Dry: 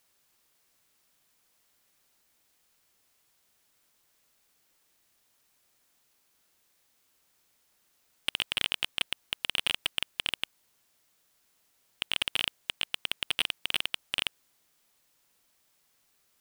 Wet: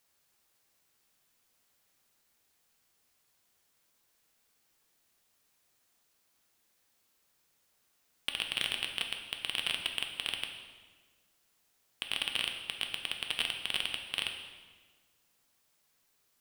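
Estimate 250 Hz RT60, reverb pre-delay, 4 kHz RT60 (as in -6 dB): 1.7 s, 3 ms, 1.2 s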